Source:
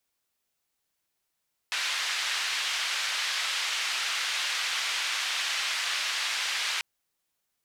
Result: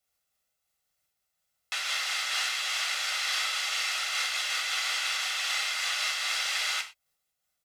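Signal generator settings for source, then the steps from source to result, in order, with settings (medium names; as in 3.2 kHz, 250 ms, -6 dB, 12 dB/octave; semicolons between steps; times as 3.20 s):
noise band 1.5–3.8 kHz, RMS -30 dBFS 5.09 s
comb 1.5 ms, depth 52%; gated-style reverb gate 140 ms falling, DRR 4 dB; random flutter of the level, depth 55%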